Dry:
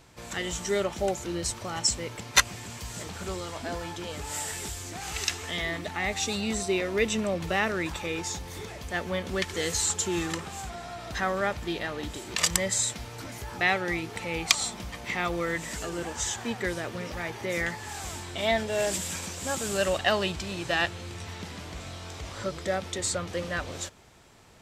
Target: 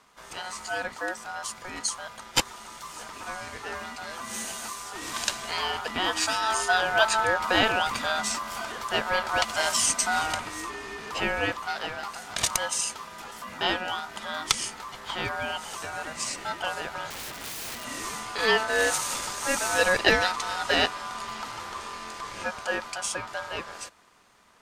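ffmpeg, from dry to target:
ffmpeg -i in.wav -filter_complex "[0:a]asettb=1/sr,asplit=3[link_01][link_02][link_03];[link_01]atrim=end=17.104[link_04];[link_02]atrim=start=17.1:end=17.85,asetpts=PTS-STARTPTS,afade=type=in:duration=0.004:curve=qsin,afade=type=out:start_time=0.746:duration=0.004:curve=qsin,aeval=exprs='(mod(44.7*val(0)+1,2)-1)/44.7':channel_layout=same[link_05];[link_03]atrim=start=17.846[link_06];[link_04][link_05]acrossfade=duration=0.004:curve1=hsin:curve2=qsin[link_07];[link_07][link_06]acrossfade=duration=0.004:curve1=qsin:curve2=hsin,aeval=exprs='val(0)*sin(2*PI*1100*n/s)':channel_layout=same,dynaudnorm=framelen=540:gausssize=11:maxgain=11.5dB,volume=-1.5dB" out.wav

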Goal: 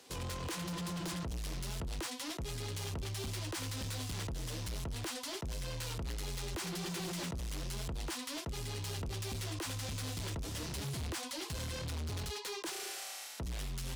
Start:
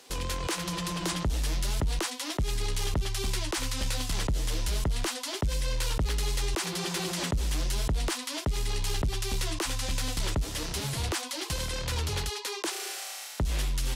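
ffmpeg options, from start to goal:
ffmpeg -i in.wav -af "highpass=frequency=64:width=0.5412,highpass=frequency=64:width=1.3066,lowshelf=frequency=220:gain=8,volume=31.5dB,asoftclip=hard,volume=-31.5dB,volume=-5.5dB" out.wav

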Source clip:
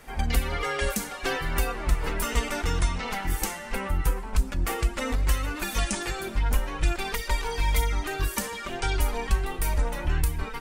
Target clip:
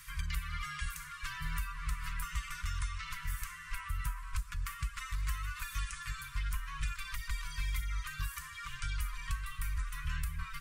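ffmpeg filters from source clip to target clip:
ffmpeg -i in.wav -filter_complex "[0:a]highshelf=frequency=3300:gain=10,acrossover=split=620|2200[link_01][link_02][link_03];[link_01]acompressor=threshold=-28dB:ratio=4[link_04];[link_02]acompressor=threshold=-38dB:ratio=4[link_05];[link_03]acompressor=threshold=-45dB:ratio=4[link_06];[link_04][link_05][link_06]amix=inputs=3:normalize=0,afftfilt=real='re*(1-between(b*sr/4096,170,970))':imag='im*(1-between(b*sr/4096,170,970))':win_size=4096:overlap=0.75,volume=-5dB" out.wav

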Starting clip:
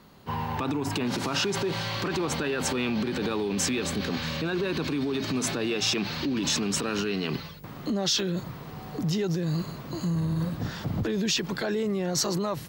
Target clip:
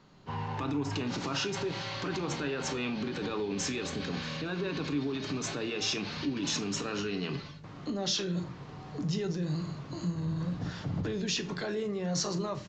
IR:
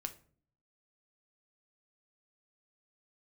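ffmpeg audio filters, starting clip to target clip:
-filter_complex "[1:a]atrim=start_sample=2205[link_01];[0:a][link_01]afir=irnorm=-1:irlink=0,aresample=16000,aresample=44100,volume=-3.5dB"

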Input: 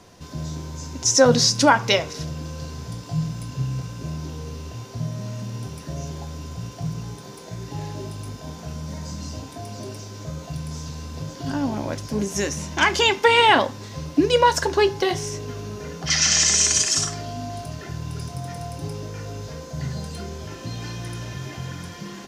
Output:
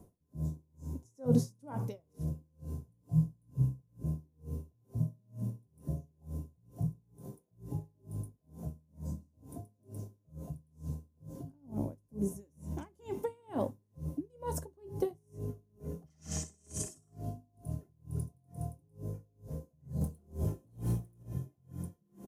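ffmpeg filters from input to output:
ffmpeg -i in.wav -filter_complex "[0:a]asettb=1/sr,asplit=3[link_01][link_02][link_03];[link_01]atrim=end=20.014[link_04];[link_02]atrim=start=20.01:end=21.23,asetpts=PTS-STARTPTS,afade=type=in:duration=0.004:curve=qsin,afade=type=out:start_time=1.216:duration=0.004:curve=qsin,aeval=exprs='0.1*(cos(1*acos(clip(val(0)/0.1,-1,1)))-cos(1*PI/2))+0.0447*(cos(5*acos(clip(val(0)/0.1,-1,1)))-cos(5*PI/2))':channel_layout=same[link_05];[link_03]atrim=start=21.226[link_06];[link_04][link_05]acrossfade=duration=0.004:curve1=hsin:curve2=qsin[link_07];[link_07][link_06]acrossfade=duration=0.004:curve1=qsin:curve2=hsin,firequalizer=gain_entry='entry(160,0);entry(1600,-25);entry(4700,-27);entry(9800,0)':delay=0.05:min_phase=1,aeval=exprs='val(0)*pow(10,-36*(0.5-0.5*cos(2*PI*2.2*n/s))/20)':channel_layout=same,volume=-2dB" out.wav

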